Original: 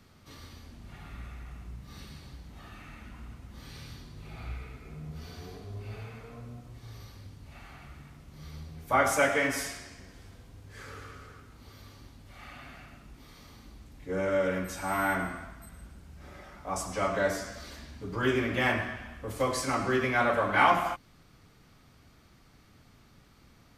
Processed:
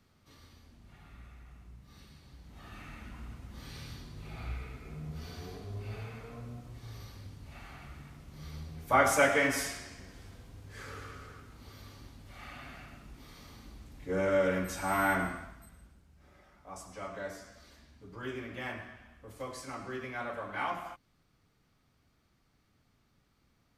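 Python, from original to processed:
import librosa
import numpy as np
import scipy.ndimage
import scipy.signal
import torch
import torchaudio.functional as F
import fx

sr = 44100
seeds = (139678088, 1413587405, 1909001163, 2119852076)

y = fx.gain(x, sr, db=fx.line((2.23, -9.0), (2.78, 0.0), (15.27, 0.0), (16.07, -12.5)))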